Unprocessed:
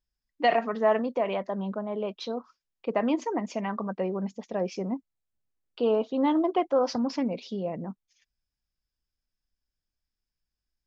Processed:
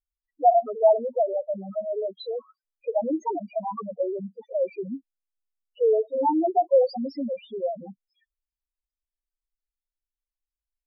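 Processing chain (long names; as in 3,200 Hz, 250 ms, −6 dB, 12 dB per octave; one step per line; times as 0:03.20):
three-way crossover with the lows and the highs turned down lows −13 dB, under 390 Hz, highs −23 dB, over 5,400 Hz
spectral peaks only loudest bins 2
level +9 dB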